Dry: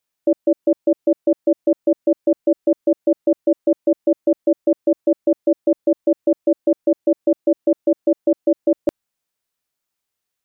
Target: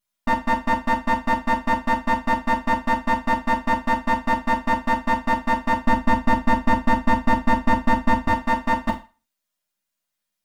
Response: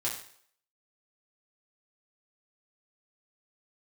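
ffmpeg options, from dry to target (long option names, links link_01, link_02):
-filter_complex "[0:a]bandreject=frequency=400:width=12,aeval=exprs='abs(val(0))':channel_layout=same,asettb=1/sr,asplit=3[link_01][link_02][link_03];[link_01]atrim=end=5.734[link_04];[link_02]atrim=start=5.73:end=8.28,asetpts=PTS-STARTPTS,afade=type=in:duration=0.004:curve=qsin,afade=type=out:start_time=2.546:duration=0.004:curve=qsin,lowshelf=frequency=300:gain=7.5[link_05];[link_03]atrim=start=8.276[link_06];[link_04][link_05]acrossfade=duration=0.004:curve1=hsin:curve2=qsin[link_07];[link_07][link_06]acrossfade=duration=0.004:curve1=qsin:curve2=hsin[link_08];[1:a]atrim=start_sample=2205,asetrate=79380,aresample=44100[link_09];[link_08][link_09]afir=irnorm=-1:irlink=0,volume=4dB"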